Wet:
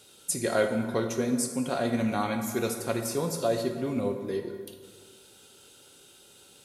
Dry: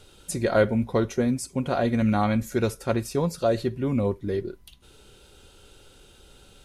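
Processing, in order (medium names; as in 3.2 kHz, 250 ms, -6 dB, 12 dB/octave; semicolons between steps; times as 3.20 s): high-pass 150 Hz 12 dB/octave; treble shelf 4.9 kHz +11.5 dB; plate-style reverb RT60 1.8 s, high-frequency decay 0.6×, DRR 4.5 dB; trim -5 dB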